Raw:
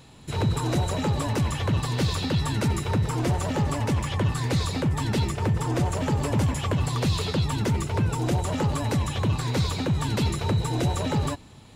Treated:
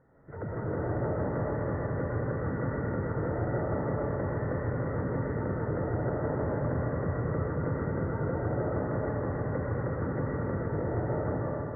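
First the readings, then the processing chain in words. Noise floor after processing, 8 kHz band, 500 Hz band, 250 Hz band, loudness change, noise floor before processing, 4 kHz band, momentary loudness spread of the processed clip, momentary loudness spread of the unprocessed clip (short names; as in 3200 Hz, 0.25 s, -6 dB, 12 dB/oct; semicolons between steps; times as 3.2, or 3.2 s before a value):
-35 dBFS, under -40 dB, 0.0 dB, -5.5 dB, -6.0 dB, -47 dBFS, under -40 dB, 1 LU, 1 LU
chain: rippled Chebyshev low-pass 2000 Hz, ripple 9 dB; digital reverb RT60 3.6 s, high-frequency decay 0.6×, pre-delay 70 ms, DRR -6.5 dB; gain -6.5 dB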